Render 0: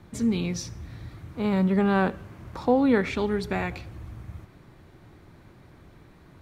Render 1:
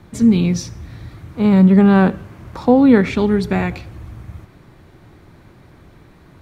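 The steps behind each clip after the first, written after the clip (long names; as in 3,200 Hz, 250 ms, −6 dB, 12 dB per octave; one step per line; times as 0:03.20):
dynamic equaliser 180 Hz, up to +7 dB, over −36 dBFS, Q 0.76
level +6 dB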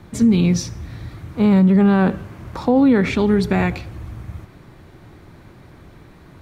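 brickwall limiter −9 dBFS, peak gain reduction 7.5 dB
level +1.5 dB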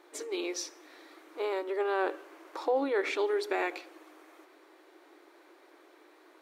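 linear-phase brick-wall high-pass 290 Hz
level −8.5 dB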